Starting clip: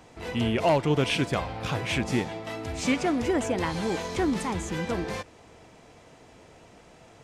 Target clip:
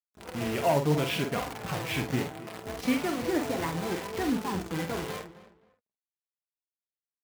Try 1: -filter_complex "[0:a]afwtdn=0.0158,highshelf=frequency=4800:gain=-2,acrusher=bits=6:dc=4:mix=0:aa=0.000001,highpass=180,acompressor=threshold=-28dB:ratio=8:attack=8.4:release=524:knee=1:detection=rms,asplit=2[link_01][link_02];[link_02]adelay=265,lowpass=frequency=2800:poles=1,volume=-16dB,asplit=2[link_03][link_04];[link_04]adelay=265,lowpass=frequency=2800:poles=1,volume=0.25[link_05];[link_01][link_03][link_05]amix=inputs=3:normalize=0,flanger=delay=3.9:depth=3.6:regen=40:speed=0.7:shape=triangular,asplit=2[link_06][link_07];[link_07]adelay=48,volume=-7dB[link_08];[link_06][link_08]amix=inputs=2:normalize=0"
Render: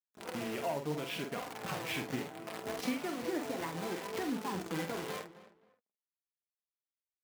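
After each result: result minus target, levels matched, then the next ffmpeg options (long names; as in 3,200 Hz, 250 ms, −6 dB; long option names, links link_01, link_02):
downward compressor: peak gain reduction +11.5 dB; 125 Hz band −4.5 dB
-filter_complex "[0:a]afwtdn=0.0158,highshelf=frequency=4800:gain=-2,acrusher=bits=6:dc=4:mix=0:aa=0.000001,highpass=180,asplit=2[link_01][link_02];[link_02]adelay=265,lowpass=frequency=2800:poles=1,volume=-16dB,asplit=2[link_03][link_04];[link_04]adelay=265,lowpass=frequency=2800:poles=1,volume=0.25[link_05];[link_01][link_03][link_05]amix=inputs=3:normalize=0,flanger=delay=3.9:depth=3.6:regen=40:speed=0.7:shape=triangular,asplit=2[link_06][link_07];[link_07]adelay=48,volume=-7dB[link_08];[link_06][link_08]amix=inputs=2:normalize=0"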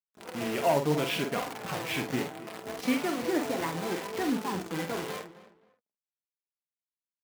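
125 Hz band −4.5 dB
-filter_complex "[0:a]afwtdn=0.0158,highshelf=frequency=4800:gain=-2,acrusher=bits=6:dc=4:mix=0:aa=0.000001,highpass=63,asplit=2[link_01][link_02];[link_02]adelay=265,lowpass=frequency=2800:poles=1,volume=-16dB,asplit=2[link_03][link_04];[link_04]adelay=265,lowpass=frequency=2800:poles=1,volume=0.25[link_05];[link_01][link_03][link_05]amix=inputs=3:normalize=0,flanger=delay=3.9:depth=3.6:regen=40:speed=0.7:shape=triangular,asplit=2[link_06][link_07];[link_07]adelay=48,volume=-7dB[link_08];[link_06][link_08]amix=inputs=2:normalize=0"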